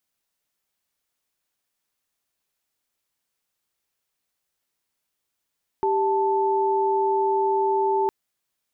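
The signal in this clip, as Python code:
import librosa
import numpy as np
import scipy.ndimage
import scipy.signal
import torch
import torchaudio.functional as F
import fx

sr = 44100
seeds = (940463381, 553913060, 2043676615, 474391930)

y = fx.chord(sr, length_s=2.26, notes=(67, 81), wave='sine', level_db=-21.5)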